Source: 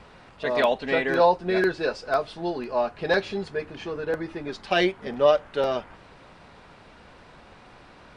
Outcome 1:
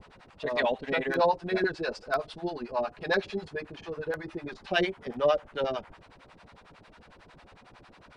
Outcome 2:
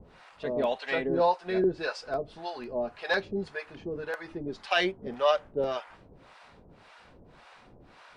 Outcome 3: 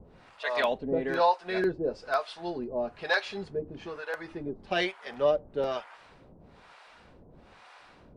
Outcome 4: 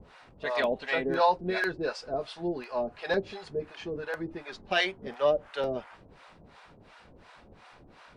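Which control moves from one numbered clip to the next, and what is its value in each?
harmonic tremolo, rate: 11 Hz, 1.8 Hz, 1.1 Hz, 2.8 Hz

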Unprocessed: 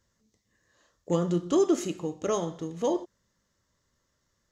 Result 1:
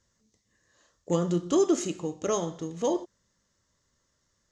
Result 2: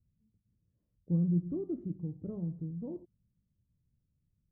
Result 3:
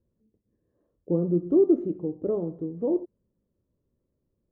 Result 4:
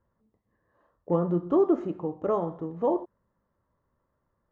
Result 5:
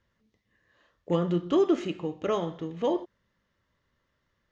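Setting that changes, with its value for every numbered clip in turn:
resonant low-pass, frequency: 7.5 kHz, 150 Hz, 390 Hz, 1 kHz, 2.8 kHz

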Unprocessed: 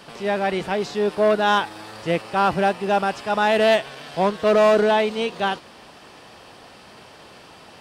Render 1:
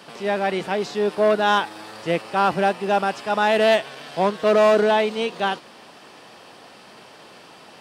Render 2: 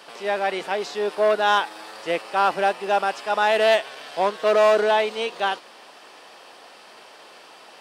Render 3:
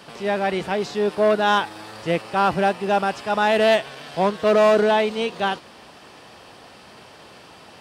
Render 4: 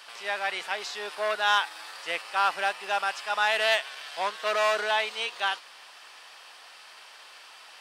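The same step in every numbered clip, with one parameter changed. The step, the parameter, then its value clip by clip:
high-pass, cutoff frequency: 150 Hz, 420 Hz, 42 Hz, 1.2 kHz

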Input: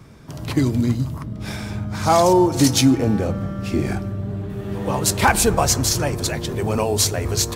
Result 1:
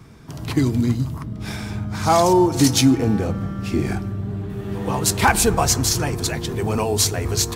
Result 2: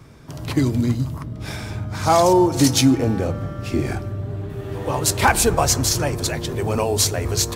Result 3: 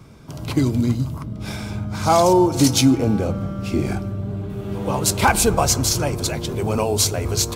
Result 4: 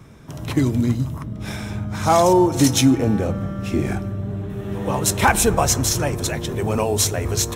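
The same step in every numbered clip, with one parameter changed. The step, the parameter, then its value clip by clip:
band-stop, frequency: 570 Hz, 200 Hz, 1.8 kHz, 4.6 kHz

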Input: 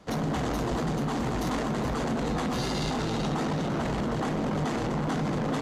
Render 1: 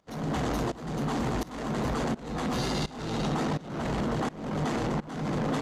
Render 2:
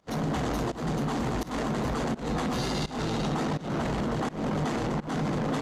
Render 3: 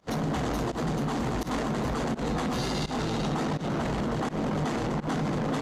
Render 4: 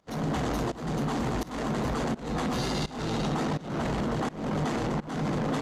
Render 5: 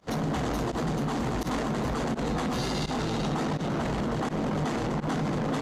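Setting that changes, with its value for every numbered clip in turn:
volume shaper, release: 481 ms, 215 ms, 106 ms, 321 ms, 64 ms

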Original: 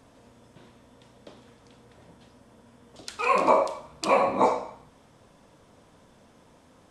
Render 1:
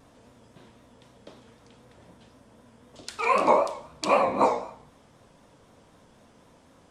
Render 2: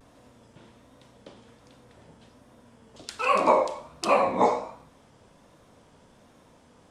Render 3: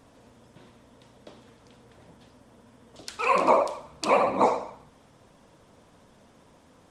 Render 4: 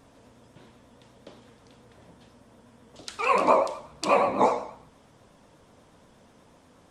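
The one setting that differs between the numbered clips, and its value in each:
vibrato, rate: 3.9 Hz, 1.3 Hz, 15 Hz, 8.3 Hz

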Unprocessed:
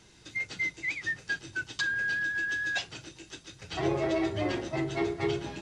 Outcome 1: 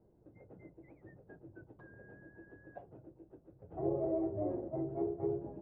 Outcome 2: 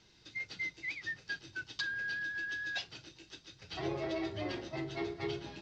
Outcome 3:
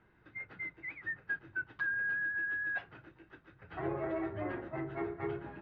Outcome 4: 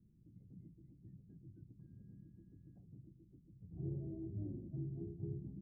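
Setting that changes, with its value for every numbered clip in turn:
four-pole ladder low-pass, frequency: 710 Hz, 5.8 kHz, 1.9 kHz, 240 Hz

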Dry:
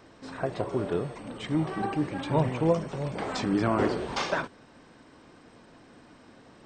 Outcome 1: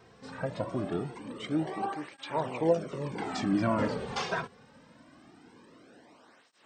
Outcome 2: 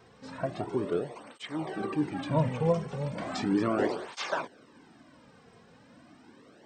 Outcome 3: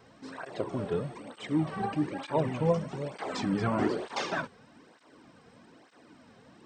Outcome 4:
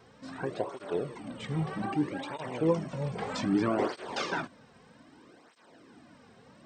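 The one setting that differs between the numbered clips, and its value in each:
cancelling through-zero flanger, nulls at: 0.23 Hz, 0.36 Hz, 1.1 Hz, 0.63 Hz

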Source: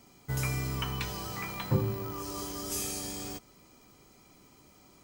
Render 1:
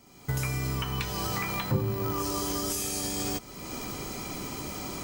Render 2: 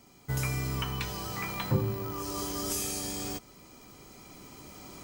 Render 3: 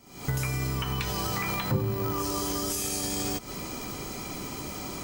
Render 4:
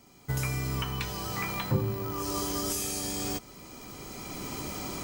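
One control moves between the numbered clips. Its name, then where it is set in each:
recorder AGC, rising by: 34 dB/s, 5 dB/s, 85 dB/s, 12 dB/s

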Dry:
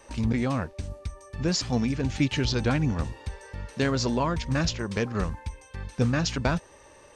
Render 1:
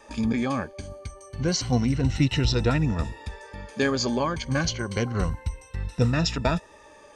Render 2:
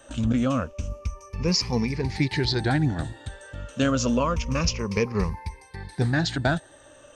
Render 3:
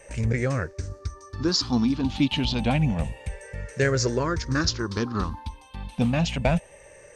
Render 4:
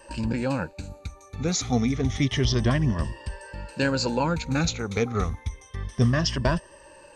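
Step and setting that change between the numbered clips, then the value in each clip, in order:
drifting ripple filter, ripples per octave: 2, 0.84, 0.51, 1.3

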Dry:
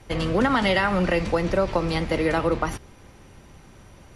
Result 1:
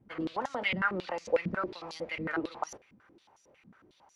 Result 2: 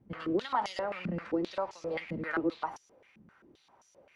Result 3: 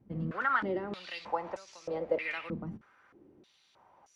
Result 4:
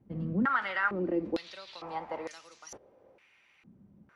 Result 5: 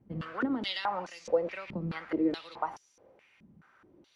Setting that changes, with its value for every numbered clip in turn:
step-sequenced band-pass, rate: 11 Hz, 7.6 Hz, 3.2 Hz, 2.2 Hz, 4.7 Hz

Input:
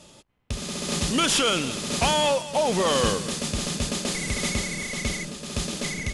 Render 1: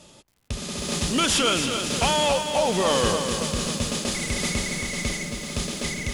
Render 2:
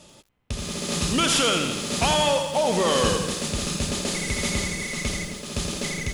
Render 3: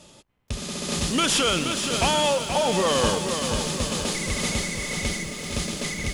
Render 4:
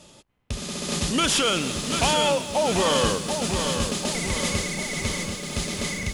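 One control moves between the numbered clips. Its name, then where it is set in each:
bit-crushed delay, time: 275 ms, 84 ms, 476 ms, 739 ms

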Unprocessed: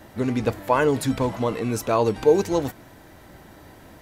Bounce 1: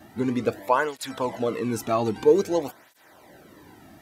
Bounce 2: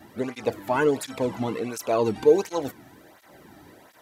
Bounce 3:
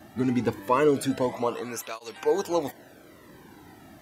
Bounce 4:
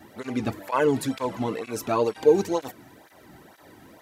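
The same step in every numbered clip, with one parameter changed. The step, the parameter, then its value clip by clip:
cancelling through-zero flanger, nulls at: 0.51 Hz, 1.4 Hz, 0.25 Hz, 2.1 Hz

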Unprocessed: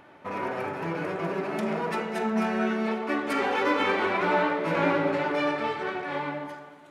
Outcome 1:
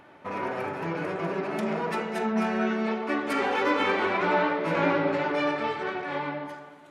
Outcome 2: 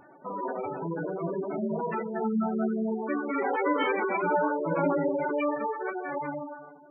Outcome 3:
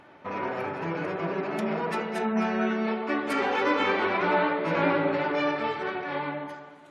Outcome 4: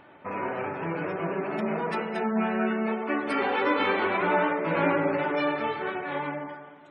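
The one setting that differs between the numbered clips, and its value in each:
spectral gate, under each frame's peak: -55 dB, -10 dB, -45 dB, -30 dB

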